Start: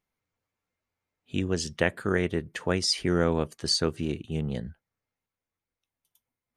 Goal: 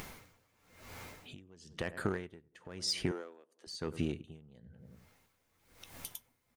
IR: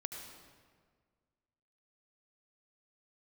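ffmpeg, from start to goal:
-filter_complex "[0:a]asplit=2[s0][s1];[s1]aeval=exprs='0.112*(abs(mod(val(0)/0.112+3,4)-2)-1)':c=same,volume=0.398[s2];[s0][s2]amix=inputs=2:normalize=0,acompressor=mode=upward:threshold=0.0224:ratio=2.5,asplit=2[s3][s4];[s4]adelay=92,lowpass=f=1300:p=1,volume=0.106,asplit=2[s5][s6];[s6]adelay=92,lowpass=f=1300:p=1,volume=0.5,asplit=2[s7][s8];[s8]adelay=92,lowpass=f=1300:p=1,volume=0.5,asplit=2[s9][s10];[s10]adelay=92,lowpass=f=1300:p=1,volume=0.5[s11];[s3][s5][s7][s9][s11]amix=inputs=5:normalize=0,acompressor=threshold=0.0158:ratio=12,asettb=1/sr,asplit=3[s12][s13][s14];[s12]atrim=end=3.114[s15];[s13]atrim=start=3.11:end=3.67,asetpts=PTS-STARTPTS,afade=t=in:d=0.004:c=qsin,afade=t=out:st=0.556:d=0.004:c=qsin,highpass=f=310:w=0.5412,highpass=f=310:w=1.3066[s16];[s14]atrim=start=3.666[s17];[s15][s16]acrossfade=d=0.004:c1=hsin:c2=qsin[s18];[s18][s17]acrossfade=d=0.004:c1=qsin:c2=hsin,aeval=exprs='val(0)*pow(10,-26*(0.5-0.5*cos(2*PI*1*n/s))/20)':c=same,volume=2.51"

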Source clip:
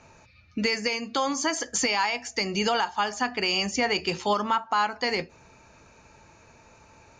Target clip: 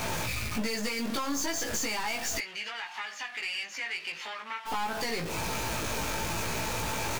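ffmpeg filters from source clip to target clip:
-filter_complex "[0:a]aeval=exprs='val(0)+0.5*0.0376*sgn(val(0))':c=same,acompressor=threshold=0.0355:ratio=6,aeval=exprs='0.126*(cos(1*acos(clip(val(0)/0.126,-1,1)))-cos(1*PI/2))+0.0355*(cos(4*acos(clip(val(0)/0.126,-1,1)))-cos(4*PI/2))':c=same,asplit=3[s0][s1][s2];[s0]afade=t=out:st=2.37:d=0.02[s3];[s1]bandpass=f=2300:t=q:w=1.7:csg=0,afade=t=in:st=2.37:d=0.02,afade=t=out:st=4.65:d=0.02[s4];[s2]afade=t=in:st=4.65:d=0.02[s5];[s3][s4][s5]amix=inputs=3:normalize=0,asoftclip=type=tanh:threshold=0.0501,asplit=2[s6][s7];[s7]adelay=18,volume=0.708[s8];[s6][s8]amix=inputs=2:normalize=0"

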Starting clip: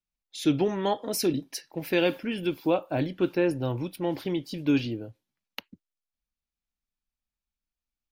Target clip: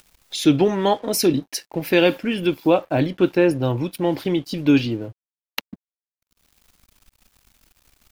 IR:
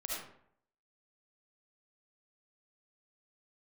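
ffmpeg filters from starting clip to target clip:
-af "acompressor=mode=upward:threshold=0.0316:ratio=2.5,aeval=exprs='sgn(val(0))*max(abs(val(0))-0.00178,0)':c=same,volume=2.51"

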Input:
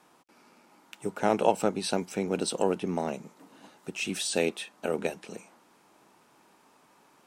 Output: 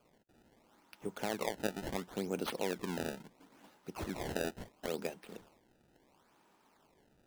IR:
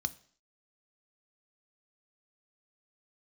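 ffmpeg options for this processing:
-af "alimiter=limit=0.168:level=0:latency=1:release=284,acrusher=samples=23:mix=1:aa=0.000001:lfo=1:lforange=36.8:lforate=0.73,volume=0.422"

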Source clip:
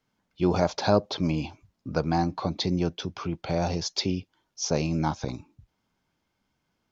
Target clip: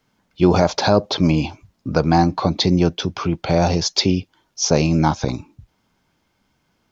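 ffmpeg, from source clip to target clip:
-af "alimiter=level_in=3.55:limit=0.891:release=50:level=0:latency=1,volume=0.891"

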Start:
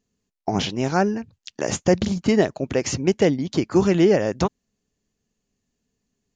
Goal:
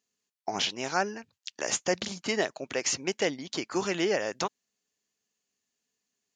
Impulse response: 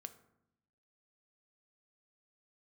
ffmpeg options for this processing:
-af "highpass=f=1400:p=1"

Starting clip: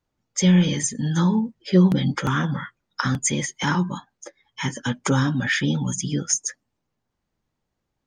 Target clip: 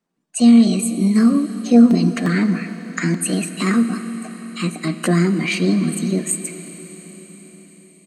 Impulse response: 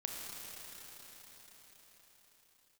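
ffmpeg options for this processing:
-filter_complex "[0:a]lowshelf=f=100:t=q:w=3:g=-13,asplit=2[s0][s1];[s1]adelay=313,lowpass=f=2200:p=1,volume=0.1,asplit=2[s2][s3];[s3]adelay=313,lowpass=f=2200:p=1,volume=0.33,asplit=2[s4][s5];[s5]adelay=313,lowpass=f=2200:p=1,volume=0.33[s6];[s0][s2][s4][s6]amix=inputs=4:normalize=0,asetrate=57191,aresample=44100,atempo=0.771105,asplit=2[s7][s8];[1:a]atrim=start_sample=2205[s9];[s8][s9]afir=irnorm=-1:irlink=0,volume=0.473[s10];[s7][s10]amix=inputs=2:normalize=0,volume=0.75"

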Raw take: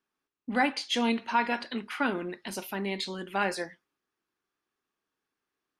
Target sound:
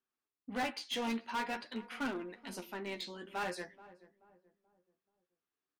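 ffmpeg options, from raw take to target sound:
-filter_complex "[0:a]asettb=1/sr,asplit=3[s0][s1][s2];[s0]atrim=end=2.634[s3];[s1]atrim=start=2.63:end=3.5,asetpts=PTS-STARTPTS,afade=t=in:d=0.004:c=qsin,afade=t=out:st=0.866:d=0.004:c=qsin,equalizer=f=11000:w=3.5:g=-14.5[s4];[s2]atrim=start=3.496[s5];[s3][s4]acrossfade=d=0.004:c1=hsin:c2=qsin[s6];[s6][s5]acrossfade=d=0.004:c1=qsin:c2=hsin,asplit=2[s7][s8];[s8]acrusher=bits=3:mix=0:aa=0.5,volume=0.447[s9];[s7][s9]amix=inputs=2:normalize=0,flanger=delay=7.5:depth=7:regen=25:speed=0.49:shape=triangular,asoftclip=type=hard:threshold=0.0531,asplit=2[s10][s11];[s11]adelay=431,lowpass=f=980:p=1,volume=0.15,asplit=2[s12][s13];[s13]adelay=431,lowpass=f=980:p=1,volume=0.42,asplit=2[s14][s15];[s15]adelay=431,lowpass=f=980:p=1,volume=0.42,asplit=2[s16][s17];[s17]adelay=431,lowpass=f=980:p=1,volume=0.42[s18];[s10][s12][s14][s16][s18]amix=inputs=5:normalize=0,volume=0.531"

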